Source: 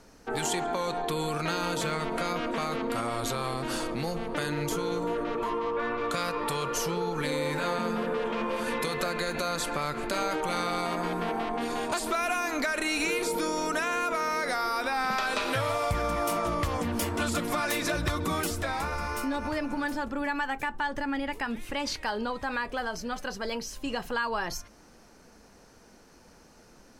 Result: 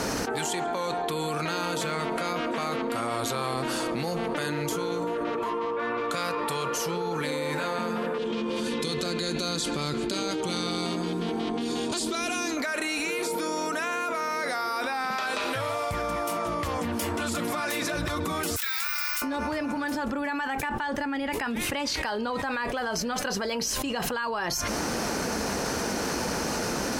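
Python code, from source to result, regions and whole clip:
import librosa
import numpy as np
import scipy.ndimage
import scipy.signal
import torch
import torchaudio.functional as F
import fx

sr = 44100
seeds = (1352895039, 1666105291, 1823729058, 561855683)

y = fx.chain(x, sr, fx.lowpass(hz=8000.0, slope=12),
    fx.band_shelf(hz=1100.0, db=-12.0, octaves=2.4),
    fx.notch(hz=2700.0, q=20.0), at=(8.18, 12.57))
y = fx.chain(y, sr, fx.bessel_highpass(hz=2300.0, order=6),
    fx.resample_bad(factor=2, down='filtered', up='zero_stuff'), at=(18.56, 19.22))
y = scipy.signal.sosfilt(scipy.signal.butter(2, 46.0, 'highpass', fs=sr, output='sos'), y)
y = fx.low_shelf(y, sr, hz=98.0, db=-7.0)
y = fx.env_flatten(y, sr, amount_pct=100)
y = y * 10.0 ** (-2.5 / 20.0)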